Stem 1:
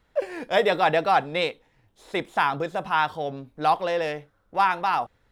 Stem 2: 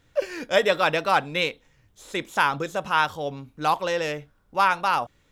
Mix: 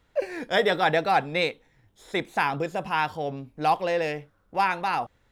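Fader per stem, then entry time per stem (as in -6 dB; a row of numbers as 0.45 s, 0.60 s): -1.0 dB, -10.0 dB; 0.00 s, 0.00 s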